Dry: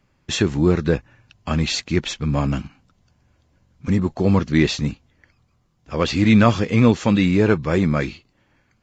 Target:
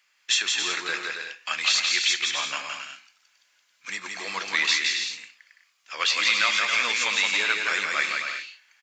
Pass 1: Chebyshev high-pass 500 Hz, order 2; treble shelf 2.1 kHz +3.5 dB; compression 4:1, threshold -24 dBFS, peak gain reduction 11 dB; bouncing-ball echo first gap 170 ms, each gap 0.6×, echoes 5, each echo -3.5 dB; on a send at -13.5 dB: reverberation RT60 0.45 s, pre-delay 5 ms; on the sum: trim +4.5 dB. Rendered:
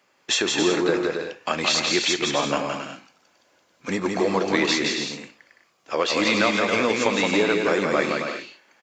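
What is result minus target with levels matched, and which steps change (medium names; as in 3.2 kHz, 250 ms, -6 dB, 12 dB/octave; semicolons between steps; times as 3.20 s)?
500 Hz band +17.5 dB
change: Chebyshev high-pass 2 kHz, order 2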